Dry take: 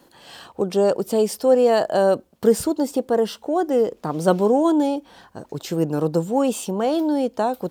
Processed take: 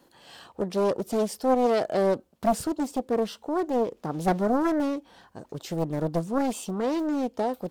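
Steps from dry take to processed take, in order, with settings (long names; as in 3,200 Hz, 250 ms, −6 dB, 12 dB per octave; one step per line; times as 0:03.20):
highs frequency-modulated by the lows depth 0.81 ms
level −6 dB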